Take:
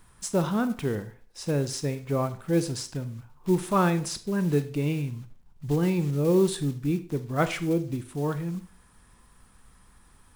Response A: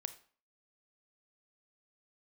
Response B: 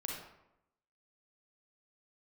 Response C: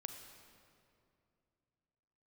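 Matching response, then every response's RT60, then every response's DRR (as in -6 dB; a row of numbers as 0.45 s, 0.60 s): A; 0.45 s, 0.85 s, 2.6 s; 11.0 dB, -1.5 dB, 5.5 dB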